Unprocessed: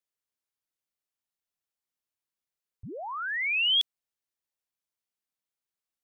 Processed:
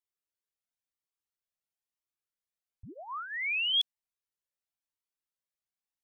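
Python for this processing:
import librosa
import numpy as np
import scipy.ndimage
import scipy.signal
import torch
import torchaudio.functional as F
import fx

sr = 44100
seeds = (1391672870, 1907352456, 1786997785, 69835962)

y = fx.lowpass(x, sr, hz=3500.0, slope=12, at=(3.28, 3.72), fade=0.02)
y = fx.comb_cascade(y, sr, direction='rising', hz=1.0)
y = y * 10.0 ** (-1.5 / 20.0)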